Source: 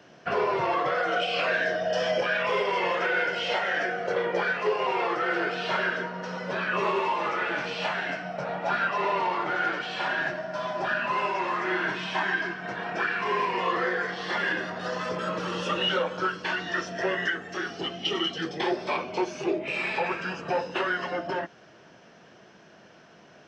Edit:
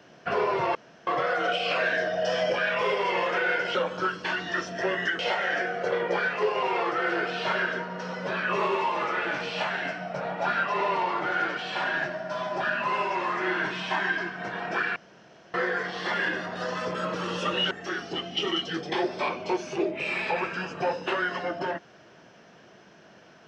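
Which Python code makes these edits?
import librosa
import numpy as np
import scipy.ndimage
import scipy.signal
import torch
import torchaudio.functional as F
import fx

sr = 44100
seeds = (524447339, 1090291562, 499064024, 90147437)

y = fx.edit(x, sr, fx.insert_room_tone(at_s=0.75, length_s=0.32),
    fx.room_tone_fill(start_s=13.2, length_s=0.58),
    fx.move(start_s=15.95, length_s=1.44, to_s=3.43), tone=tone)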